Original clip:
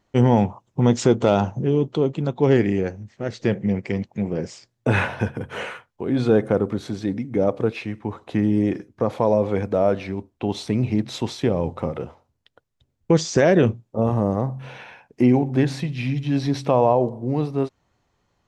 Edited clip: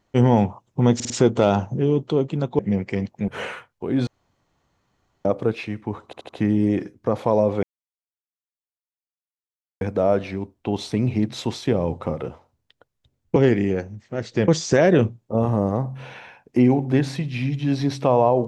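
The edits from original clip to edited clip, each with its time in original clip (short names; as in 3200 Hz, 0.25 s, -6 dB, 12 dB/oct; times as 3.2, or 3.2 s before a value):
0.95 stutter 0.05 s, 4 plays
2.44–3.56 move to 13.12
4.25–5.46 cut
6.25–7.43 room tone
8.23 stutter 0.08 s, 4 plays
9.57 insert silence 2.18 s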